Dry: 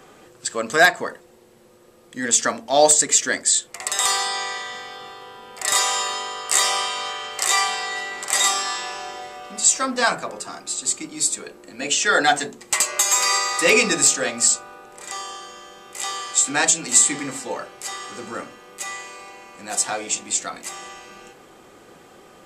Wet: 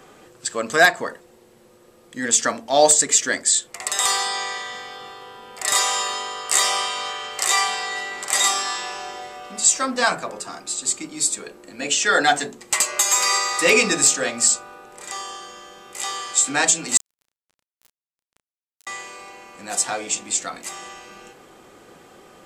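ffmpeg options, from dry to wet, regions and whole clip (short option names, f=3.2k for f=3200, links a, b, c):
-filter_complex "[0:a]asettb=1/sr,asplit=3[a][b][c];[a]atrim=end=16.974[d];[b]atrim=start=16.97:end=18.87,asetpts=PTS-STARTPTS,afade=t=in:d=0.004:c=qsin,afade=t=out:st=1.896:d=0.004:c=qsin,acompressor=threshold=-26dB:ratio=20:attack=3.2:release=140:knee=1:detection=peak,acrusher=bits=2:mix=0:aa=0.5,asplit=2[e][f];[f]adelay=32,volume=-8.5dB[g];[e][g]amix=inputs=2:normalize=0,atrim=end_sample=83790[h];[c]atrim=start=18.866[i];[d][h]acrossfade=d=0.004:c1=hsin:c2=qsin[j];[j][i]acrossfade=d=0.004:c1=qsin:c2=hsin"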